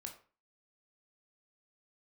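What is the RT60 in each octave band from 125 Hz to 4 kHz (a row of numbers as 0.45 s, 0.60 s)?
0.45 s, 0.40 s, 0.40 s, 0.40 s, 0.35 s, 0.30 s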